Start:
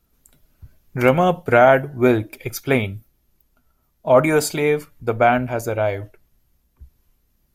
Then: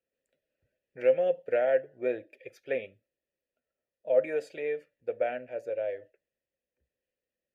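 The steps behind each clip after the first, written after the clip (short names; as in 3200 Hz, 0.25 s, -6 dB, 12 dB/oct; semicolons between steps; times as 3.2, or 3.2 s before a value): vowel filter e; gain -4 dB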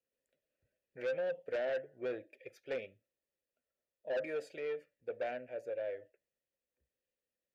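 soft clip -27 dBFS, distortion -8 dB; gain -4.5 dB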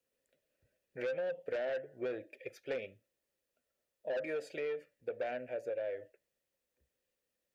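compressor, threshold -40 dBFS, peak gain reduction 7 dB; gain +5.5 dB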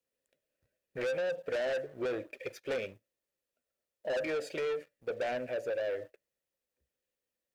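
sample leveller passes 2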